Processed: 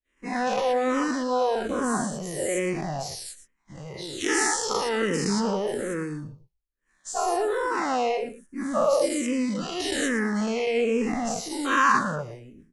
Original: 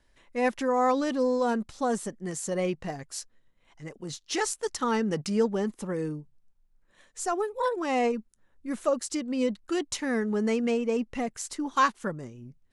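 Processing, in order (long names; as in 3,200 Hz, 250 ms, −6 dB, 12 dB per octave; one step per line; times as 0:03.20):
every bin's largest magnitude spread in time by 240 ms
downward expander −44 dBFS
single-tap delay 115 ms −15 dB
frequency shifter mixed with the dry sound −1.2 Hz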